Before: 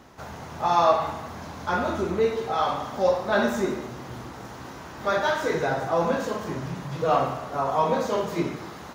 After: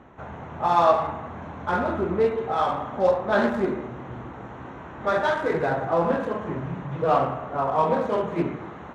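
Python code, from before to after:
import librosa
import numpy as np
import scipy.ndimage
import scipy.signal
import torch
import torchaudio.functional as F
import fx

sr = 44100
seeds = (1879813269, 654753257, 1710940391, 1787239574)

y = fx.wiener(x, sr, points=9)
y = fx.high_shelf(y, sr, hz=6700.0, db=-11.5)
y = fx.doppler_dist(y, sr, depth_ms=0.19)
y = y * 10.0 ** (1.5 / 20.0)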